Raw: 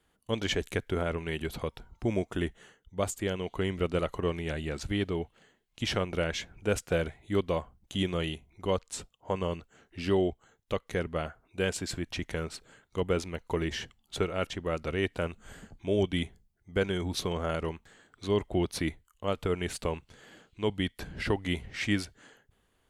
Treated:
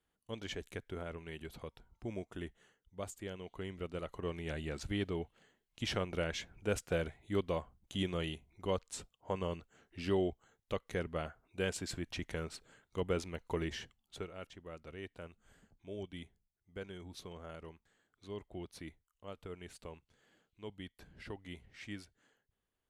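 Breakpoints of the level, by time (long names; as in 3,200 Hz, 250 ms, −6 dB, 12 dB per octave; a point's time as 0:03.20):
0:03.98 −12.5 dB
0:04.54 −6 dB
0:13.63 −6 dB
0:14.45 −17 dB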